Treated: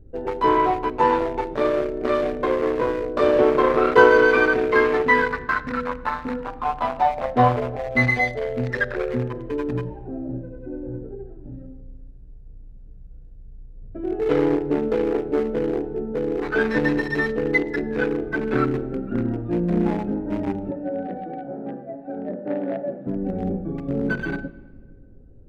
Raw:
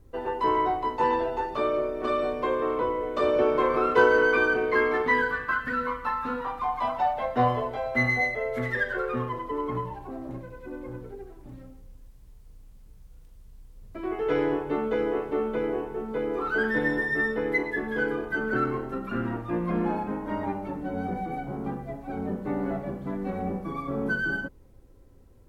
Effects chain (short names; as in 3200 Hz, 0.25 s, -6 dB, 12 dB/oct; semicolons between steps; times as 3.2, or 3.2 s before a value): Wiener smoothing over 41 samples; 20.71–23.07 speaker cabinet 300–3900 Hz, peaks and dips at 410 Hz -7 dB, 580 Hz +9 dB, 1800 Hz +7 dB; reverb RT60 1.6 s, pre-delay 7 ms, DRR 15.5 dB; gain +7 dB